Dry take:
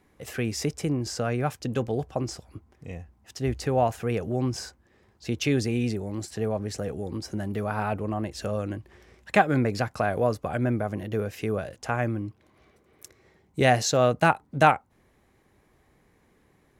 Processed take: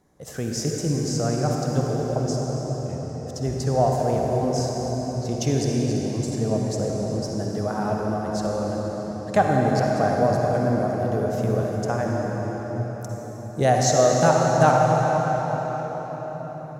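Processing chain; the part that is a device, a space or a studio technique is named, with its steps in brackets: cathedral (reverberation RT60 6.0 s, pre-delay 45 ms, DRR -1.5 dB); fifteen-band graphic EQ 160 Hz +6 dB, 630 Hz +6 dB, 2.5 kHz -11 dB, 6.3 kHz +8 dB; trim -2.5 dB

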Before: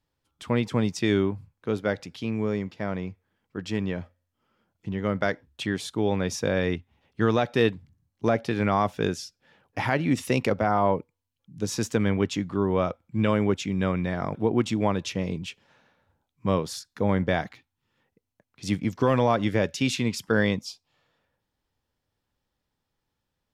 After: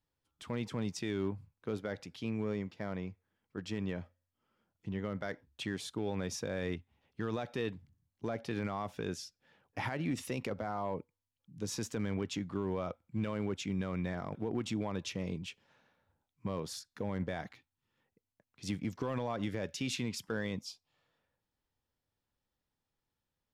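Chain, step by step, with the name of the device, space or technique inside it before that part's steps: limiter into clipper (peak limiter -18 dBFS, peak gain reduction 8 dB; hard clipper -19 dBFS, distortion -31 dB); trim -7.5 dB

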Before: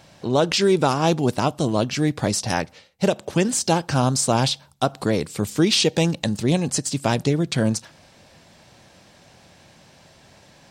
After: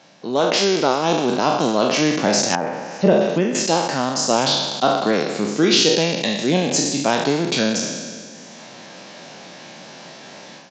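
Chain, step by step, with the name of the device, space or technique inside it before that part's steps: spectral sustain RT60 1.73 s; 2.55–3.55 s: de-esser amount 90%; reverb removal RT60 0.52 s; Bluetooth headset (high-pass 180 Hz 24 dB/octave; level rider gain up to 12.5 dB; resampled via 16 kHz; trim -1 dB; SBC 64 kbps 16 kHz)

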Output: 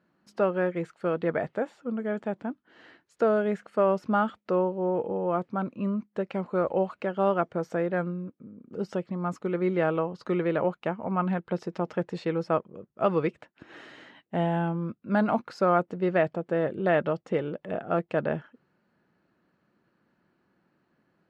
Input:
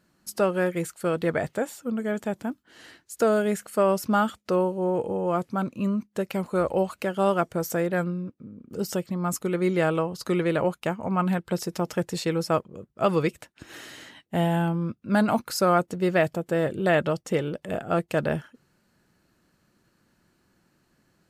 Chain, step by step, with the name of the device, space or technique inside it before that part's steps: high-pass 280 Hz 6 dB/octave; phone in a pocket (low-pass 3.6 kHz 12 dB/octave; peaking EQ 180 Hz +2 dB; treble shelf 2.5 kHz -10.5 dB); 13.77–15.47 s: treble shelf 7.5 kHz +5.5 dB

